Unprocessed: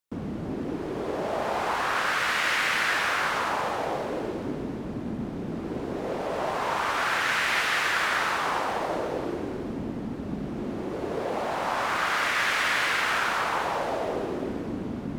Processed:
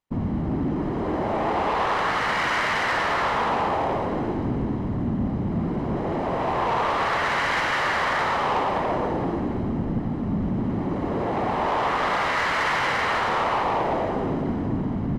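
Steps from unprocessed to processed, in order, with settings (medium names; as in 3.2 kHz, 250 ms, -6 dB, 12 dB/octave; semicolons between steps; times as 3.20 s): low-pass 1.3 kHz 6 dB/octave; comb 1 ms, depth 48%; harmony voices -12 st -7 dB, -4 st -5 dB; saturation -25 dBFS, distortion -14 dB; on a send: loudspeakers at several distances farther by 18 m -11 dB, 39 m -10 dB; on the sum: trim +6 dB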